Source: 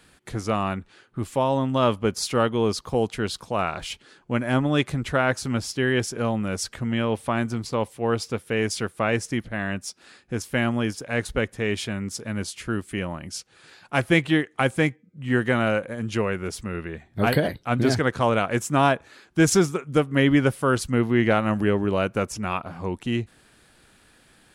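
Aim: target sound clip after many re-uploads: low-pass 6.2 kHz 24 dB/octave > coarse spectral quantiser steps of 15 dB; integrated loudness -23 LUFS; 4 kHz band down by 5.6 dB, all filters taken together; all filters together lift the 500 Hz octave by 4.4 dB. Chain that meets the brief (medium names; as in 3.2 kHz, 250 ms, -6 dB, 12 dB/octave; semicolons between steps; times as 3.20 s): low-pass 6.2 kHz 24 dB/octave; peaking EQ 500 Hz +5.5 dB; peaking EQ 4 kHz -8 dB; coarse spectral quantiser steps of 15 dB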